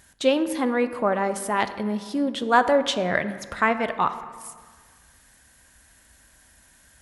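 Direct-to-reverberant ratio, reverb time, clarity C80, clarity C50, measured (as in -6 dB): 10.5 dB, 1.7 s, 13.5 dB, 12.0 dB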